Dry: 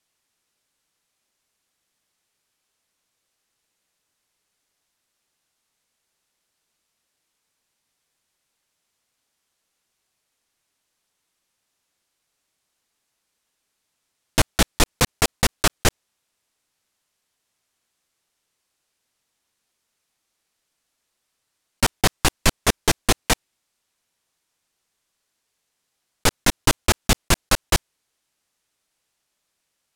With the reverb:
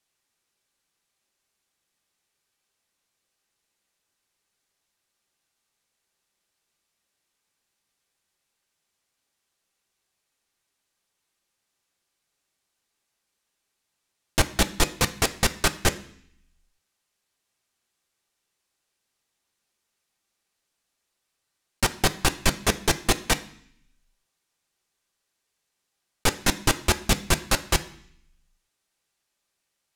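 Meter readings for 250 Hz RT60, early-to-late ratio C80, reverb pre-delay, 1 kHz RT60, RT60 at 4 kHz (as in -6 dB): 0.85 s, 19.5 dB, 3 ms, 0.65 s, 0.75 s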